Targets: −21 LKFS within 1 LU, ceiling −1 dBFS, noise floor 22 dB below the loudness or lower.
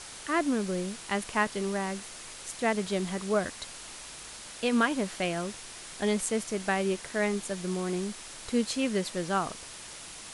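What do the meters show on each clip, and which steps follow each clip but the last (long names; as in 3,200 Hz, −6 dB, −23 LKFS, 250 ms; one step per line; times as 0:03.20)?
background noise floor −45 dBFS; target noise floor −53 dBFS; integrated loudness −30.5 LKFS; sample peak −13.0 dBFS; target loudness −21.0 LKFS
→ broadband denoise 8 dB, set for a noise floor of −45 dBFS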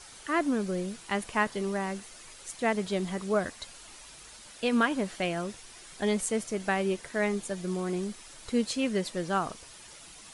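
background noise floor −50 dBFS; target noise floor −53 dBFS
→ broadband denoise 6 dB, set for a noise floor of −50 dBFS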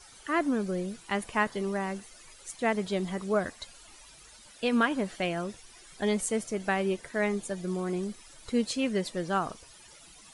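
background noise floor −53 dBFS; integrated loudness −30.5 LKFS; sample peak −13.0 dBFS; target loudness −21.0 LKFS
→ level +9.5 dB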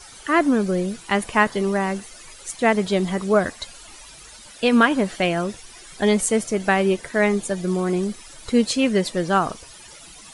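integrated loudness −21.0 LKFS; sample peak −3.5 dBFS; background noise floor −44 dBFS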